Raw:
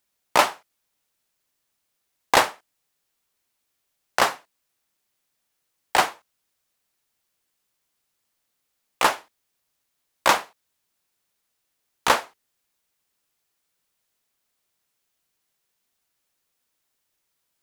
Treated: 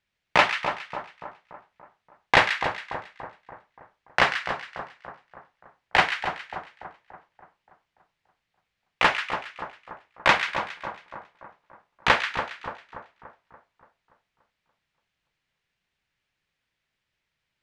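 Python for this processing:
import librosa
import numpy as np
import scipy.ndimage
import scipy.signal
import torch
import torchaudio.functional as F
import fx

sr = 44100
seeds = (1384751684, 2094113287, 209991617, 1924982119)

y = scipy.signal.sosfilt(scipy.signal.butter(2, 2400.0, 'lowpass', fs=sr, output='sos'), x)
y = fx.band_shelf(y, sr, hz=560.0, db=-9.0, octaves=2.9)
y = fx.echo_split(y, sr, split_hz=1400.0, low_ms=288, high_ms=137, feedback_pct=52, wet_db=-7.5)
y = y * 10.0 ** (6.5 / 20.0)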